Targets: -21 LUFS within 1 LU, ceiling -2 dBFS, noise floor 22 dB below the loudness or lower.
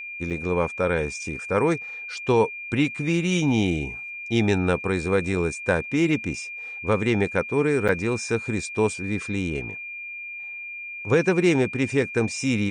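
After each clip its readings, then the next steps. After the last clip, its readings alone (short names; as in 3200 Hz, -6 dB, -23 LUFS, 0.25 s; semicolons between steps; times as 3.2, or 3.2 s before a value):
dropouts 2; longest dropout 7.4 ms; steady tone 2400 Hz; tone level -33 dBFS; loudness -24.5 LUFS; peak -8.5 dBFS; loudness target -21.0 LUFS
-> interpolate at 0.3/7.88, 7.4 ms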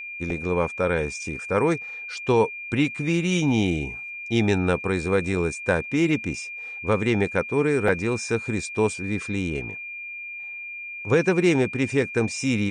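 dropouts 0; steady tone 2400 Hz; tone level -33 dBFS
-> notch 2400 Hz, Q 30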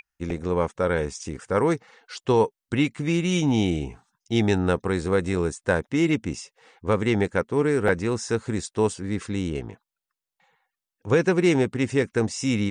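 steady tone none; loudness -24.5 LUFS; peak -9.0 dBFS; loudness target -21.0 LUFS
-> gain +3.5 dB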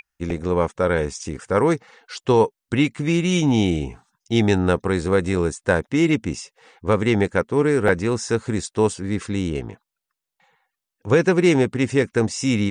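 loudness -21.0 LUFS; peak -5.5 dBFS; noise floor -85 dBFS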